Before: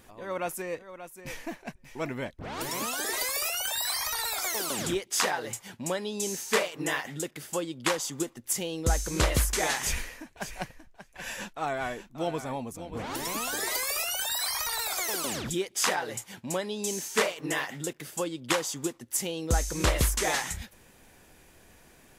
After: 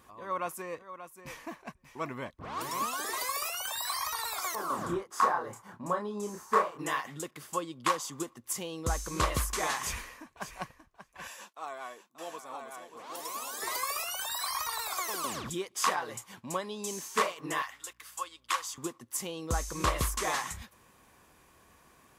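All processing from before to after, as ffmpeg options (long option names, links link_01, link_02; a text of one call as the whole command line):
ffmpeg -i in.wav -filter_complex "[0:a]asettb=1/sr,asplit=3[link_01][link_02][link_03];[link_01]atrim=end=4.554[link_04];[link_02]atrim=start=4.55:end=6.79,asetpts=PTS-STARTPTS,afade=type=in:duration=0.004:curve=qsin,afade=type=out:start_time=2.236:duration=0.004:curve=qsin,highshelf=frequency=1900:width_type=q:width=1.5:gain=-10.5,asplit=2[link_05][link_06];[link_06]adelay=29,volume=-4dB[link_07];[link_05][link_07]amix=inputs=2:normalize=0,atrim=end_sample=98784[link_08];[link_03]atrim=start=6.786[link_09];[link_04][link_08]acrossfade=duration=0.004:curve1=hsin:curve2=qsin[link_10];[link_10][link_09]acrossfade=duration=0.004:curve1=qsin:curve2=hsin,asettb=1/sr,asplit=3[link_11][link_12][link_13];[link_11]atrim=end=11.274[link_14];[link_12]atrim=start=11.27:end=13.62,asetpts=PTS-STARTPTS,afade=type=in:duration=0.004:curve=qsin,afade=type=out:start_time=2.346:duration=0.004:curve=qsin,highpass=520,equalizer=frequency=1400:width_type=o:width=2.6:gain=-8,aecho=1:1:912:0.631,atrim=end_sample=103635[link_15];[link_13]atrim=start=13.616[link_16];[link_14][link_15]acrossfade=duration=0.004:curve1=hsin:curve2=qsin[link_17];[link_17][link_16]acrossfade=duration=0.004:curve1=qsin:curve2=hsin,asettb=1/sr,asplit=3[link_18][link_19][link_20];[link_18]atrim=end=17.624[link_21];[link_19]atrim=start=17.62:end=18.78,asetpts=PTS-STARTPTS,afade=type=in:duration=0.004:curve=qsin,afade=type=out:start_time=1.156:duration=0.004:curve=qsin,highpass=1100,aeval=exprs='val(0)+0.000501*(sin(2*PI*60*n/s)+sin(2*PI*2*60*n/s)/2+sin(2*PI*3*60*n/s)/3+sin(2*PI*4*60*n/s)/4+sin(2*PI*5*60*n/s)/5)':channel_layout=same[link_22];[link_20]atrim=start=18.776[link_23];[link_21][link_22]acrossfade=duration=0.004:curve1=hsin:curve2=qsin[link_24];[link_24][link_23]acrossfade=duration=0.004:curve1=qsin:curve2=hsin,highpass=42,equalizer=frequency=1100:width=4.5:gain=14.5,volume=-5.5dB" out.wav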